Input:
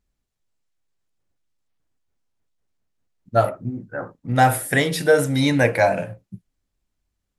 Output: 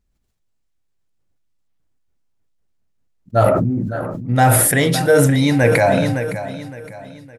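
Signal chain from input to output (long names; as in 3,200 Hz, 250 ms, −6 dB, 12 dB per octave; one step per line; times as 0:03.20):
low-shelf EQ 320 Hz +5 dB
repeating echo 563 ms, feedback 41%, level −13.5 dB
level that may fall only so fast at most 23 dB per second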